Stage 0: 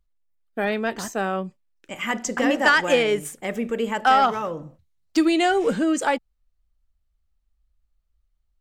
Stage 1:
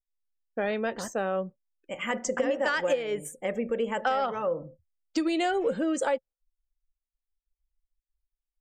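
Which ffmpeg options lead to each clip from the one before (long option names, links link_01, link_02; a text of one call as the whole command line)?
ffmpeg -i in.wav -af "afftdn=noise_reduction=27:noise_floor=-45,equalizer=frequency=530:width=5.3:gain=12.5,acompressor=threshold=-18dB:ratio=8,volume=-5dB" out.wav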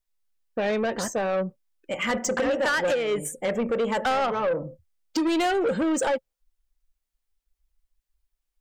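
ffmpeg -i in.wav -af "asoftclip=type=tanh:threshold=-28dB,volume=8dB" out.wav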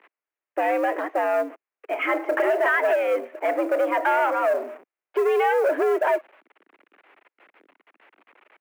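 ffmpeg -i in.wav -af "aeval=exprs='val(0)+0.5*0.0133*sgn(val(0))':channel_layout=same,highpass=frequency=230:width_type=q:width=0.5412,highpass=frequency=230:width_type=q:width=1.307,lowpass=frequency=2400:width_type=q:width=0.5176,lowpass=frequency=2400:width_type=q:width=0.7071,lowpass=frequency=2400:width_type=q:width=1.932,afreqshift=95,acrusher=bits=8:mode=log:mix=0:aa=0.000001,volume=2.5dB" out.wav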